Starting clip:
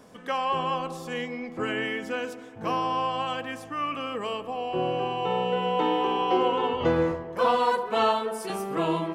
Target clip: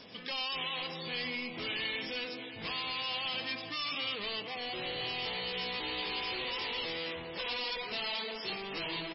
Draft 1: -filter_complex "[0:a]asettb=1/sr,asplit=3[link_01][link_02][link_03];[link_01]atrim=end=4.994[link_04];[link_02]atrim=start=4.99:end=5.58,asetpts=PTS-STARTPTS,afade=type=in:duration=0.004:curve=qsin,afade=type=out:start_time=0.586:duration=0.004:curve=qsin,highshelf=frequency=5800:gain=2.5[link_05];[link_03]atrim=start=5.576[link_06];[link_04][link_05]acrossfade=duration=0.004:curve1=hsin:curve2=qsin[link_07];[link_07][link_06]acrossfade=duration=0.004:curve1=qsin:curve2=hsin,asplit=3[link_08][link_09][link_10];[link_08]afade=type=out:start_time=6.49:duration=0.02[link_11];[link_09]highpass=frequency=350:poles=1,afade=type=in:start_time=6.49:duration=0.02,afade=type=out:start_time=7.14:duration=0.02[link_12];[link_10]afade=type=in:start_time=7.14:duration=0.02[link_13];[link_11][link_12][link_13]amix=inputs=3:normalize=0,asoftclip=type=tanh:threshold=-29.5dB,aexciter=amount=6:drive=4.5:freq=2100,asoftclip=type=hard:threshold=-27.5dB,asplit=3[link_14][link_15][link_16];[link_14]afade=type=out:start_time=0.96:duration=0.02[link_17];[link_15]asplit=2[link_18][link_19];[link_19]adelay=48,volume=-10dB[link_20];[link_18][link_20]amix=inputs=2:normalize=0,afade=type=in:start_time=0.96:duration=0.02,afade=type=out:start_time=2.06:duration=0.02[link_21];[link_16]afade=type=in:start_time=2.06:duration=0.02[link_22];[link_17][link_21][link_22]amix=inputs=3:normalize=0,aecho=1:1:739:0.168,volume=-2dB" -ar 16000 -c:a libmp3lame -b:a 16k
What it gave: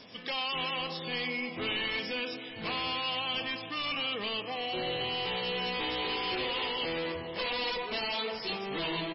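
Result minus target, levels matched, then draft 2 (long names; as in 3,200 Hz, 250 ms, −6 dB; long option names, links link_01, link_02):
soft clipping: distortion −4 dB
-filter_complex "[0:a]asettb=1/sr,asplit=3[link_01][link_02][link_03];[link_01]atrim=end=4.994[link_04];[link_02]atrim=start=4.99:end=5.58,asetpts=PTS-STARTPTS,afade=type=in:duration=0.004:curve=qsin,afade=type=out:start_time=0.586:duration=0.004:curve=qsin,highshelf=frequency=5800:gain=2.5[link_05];[link_03]atrim=start=5.576[link_06];[link_04][link_05]acrossfade=duration=0.004:curve1=hsin:curve2=qsin[link_07];[link_07][link_06]acrossfade=duration=0.004:curve1=qsin:curve2=hsin,asplit=3[link_08][link_09][link_10];[link_08]afade=type=out:start_time=6.49:duration=0.02[link_11];[link_09]highpass=frequency=350:poles=1,afade=type=in:start_time=6.49:duration=0.02,afade=type=out:start_time=7.14:duration=0.02[link_12];[link_10]afade=type=in:start_time=7.14:duration=0.02[link_13];[link_11][link_12][link_13]amix=inputs=3:normalize=0,asoftclip=type=tanh:threshold=-38dB,aexciter=amount=6:drive=4.5:freq=2100,asoftclip=type=hard:threshold=-27.5dB,asplit=3[link_14][link_15][link_16];[link_14]afade=type=out:start_time=0.96:duration=0.02[link_17];[link_15]asplit=2[link_18][link_19];[link_19]adelay=48,volume=-10dB[link_20];[link_18][link_20]amix=inputs=2:normalize=0,afade=type=in:start_time=0.96:duration=0.02,afade=type=out:start_time=2.06:duration=0.02[link_21];[link_16]afade=type=in:start_time=2.06:duration=0.02[link_22];[link_17][link_21][link_22]amix=inputs=3:normalize=0,aecho=1:1:739:0.168,volume=-2dB" -ar 16000 -c:a libmp3lame -b:a 16k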